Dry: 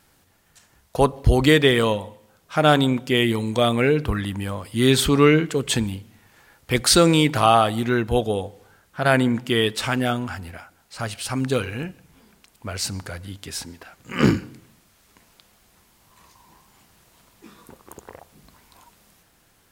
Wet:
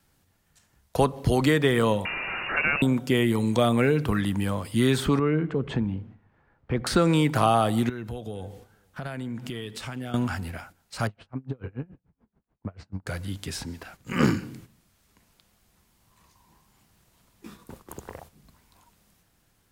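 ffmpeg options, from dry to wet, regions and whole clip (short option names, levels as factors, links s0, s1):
-filter_complex "[0:a]asettb=1/sr,asplit=3[s0][s1][s2];[s0]atrim=end=2.054[s3];[s1]atrim=start=2.05:end=2.82,asetpts=PTS-STARTPTS,afade=t=in:d=0.004:c=qsin,afade=t=out:st=0.766:d=0.004:c=qsin,aeval=exprs='val(0)+0.5*0.0891*sgn(val(0))':c=same,lowpass=f=2500:t=q:w=0.5098,lowpass=f=2500:t=q:w=0.6013,lowpass=f=2500:t=q:w=0.9,lowpass=f=2500:t=q:w=2.563,afreqshift=-2900[s4];[s2]atrim=start=2.816[s5];[s3][s4]acrossfade=d=0.004:c1=hsin:c2=qsin[s6];[s6][s5]acrossfade=d=0.004:c1=qsin:c2=hsin,asettb=1/sr,asplit=3[s7][s8][s9];[s7]atrim=end=5.194[s10];[s8]atrim=start=5.19:end=6.87,asetpts=PTS-STARTPTS,afade=t=in:d=0.004:c=qsin,afade=t=out:st=1.676:d=0.004:c=qsin,lowpass=1400,acompressor=threshold=0.0282:ratio=1.5:attack=3.2:release=140:knee=1:detection=peak[s11];[s9]atrim=start=6.866[s12];[s10][s11]acrossfade=d=0.004:c1=hsin:c2=qsin[s13];[s13][s12]acrossfade=d=0.004:c1=qsin:c2=hsin,asettb=1/sr,asplit=3[s14][s15][s16];[s14]atrim=end=7.894[s17];[s15]atrim=start=7.89:end=10.14,asetpts=PTS-STARTPTS,afade=t=in:d=0.004:c=qsin,afade=t=out:st=2.246:d=0.004:c=qsin,acompressor=threshold=0.0178:ratio=5:attack=3.2:release=140:knee=1:detection=peak,aecho=1:1:464:0.075,atrim=end_sample=99225[s18];[s16]atrim=start=10.136[s19];[s17][s18]acrossfade=d=0.004:c1=hsin:c2=qsin[s20];[s20][s19]acrossfade=d=0.004:c1=qsin:c2=hsin,asettb=1/sr,asplit=3[s21][s22][s23];[s21]atrim=end=11.074[s24];[s22]atrim=start=11.07:end=13.07,asetpts=PTS-STARTPTS,afade=t=in:d=0.004:c=qsin,afade=t=out:st=1.996:d=0.004:c=qsin,lowpass=1200,acompressor=threshold=0.0447:ratio=12:attack=3.2:release=140:knee=1:detection=peak,aeval=exprs='val(0)*pow(10,-30*(0.5-0.5*cos(2*PI*6.9*n/s))/20)':c=same[s25];[s23]atrim=start=13.066[s26];[s24][s25]acrossfade=d=0.004:c1=hsin:c2=qsin[s27];[s27][s26]acrossfade=d=0.004:c1=qsin:c2=hsin,agate=range=0.355:threshold=0.00398:ratio=16:detection=peak,bass=f=250:g=6,treble=f=4000:g=1,acrossover=split=130|810|1800|5100[s28][s29][s30][s31][s32];[s28]acompressor=threshold=0.0141:ratio=4[s33];[s29]acompressor=threshold=0.1:ratio=4[s34];[s30]acompressor=threshold=0.0501:ratio=4[s35];[s31]acompressor=threshold=0.0126:ratio=4[s36];[s32]acompressor=threshold=0.01:ratio=4[s37];[s33][s34][s35][s36][s37]amix=inputs=5:normalize=0"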